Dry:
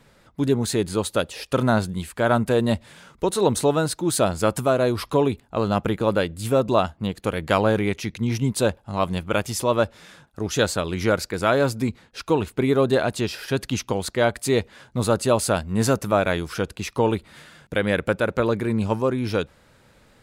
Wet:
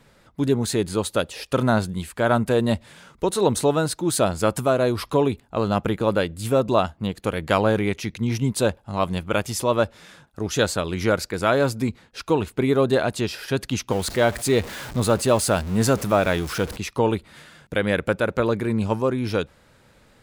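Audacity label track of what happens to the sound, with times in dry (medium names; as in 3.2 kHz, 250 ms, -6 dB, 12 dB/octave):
13.900000	16.770000	jump at every zero crossing of -30.5 dBFS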